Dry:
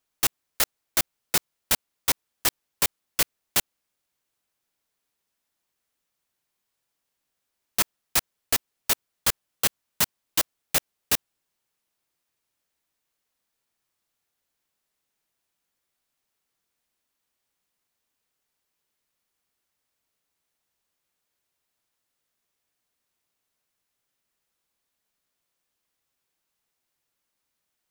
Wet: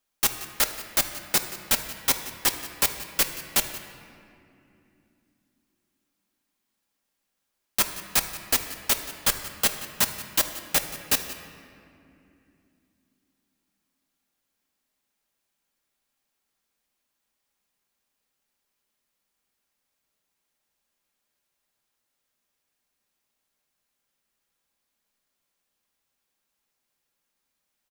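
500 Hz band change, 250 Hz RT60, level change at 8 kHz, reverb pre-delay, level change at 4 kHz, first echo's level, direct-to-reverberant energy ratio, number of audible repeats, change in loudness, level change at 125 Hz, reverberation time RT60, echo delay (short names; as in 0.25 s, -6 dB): +1.0 dB, 4.5 s, +1.0 dB, 4 ms, +1.0 dB, -16.5 dB, 4.5 dB, 1, +1.0 dB, 0.0 dB, 2.8 s, 0.178 s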